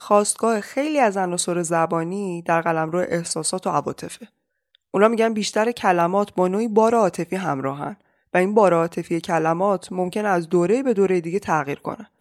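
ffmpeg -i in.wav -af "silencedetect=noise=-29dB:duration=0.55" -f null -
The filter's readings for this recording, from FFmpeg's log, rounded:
silence_start: 4.23
silence_end: 4.94 | silence_duration: 0.71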